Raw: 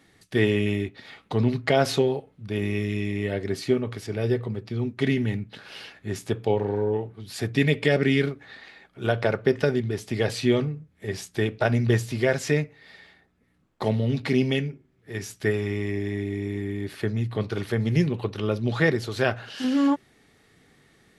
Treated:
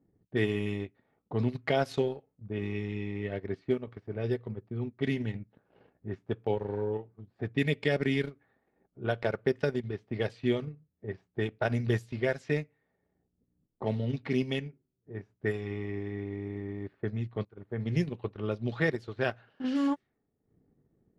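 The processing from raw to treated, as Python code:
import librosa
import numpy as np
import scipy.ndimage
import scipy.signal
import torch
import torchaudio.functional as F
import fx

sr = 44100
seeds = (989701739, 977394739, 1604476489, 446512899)

y = fx.edit(x, sr, fx.fade_in_from(start_s=17.45, length_s=0.47, floor_db=-20.0), tone=tone)
y = fx.env_lowpass(y, sr, base_hz=410.0, full_db=-18.0)
y = fx.transient(y, sr, attack_db=1, sustain_db=-11)
y = y * librosa.db_to_amplitude(-7.0)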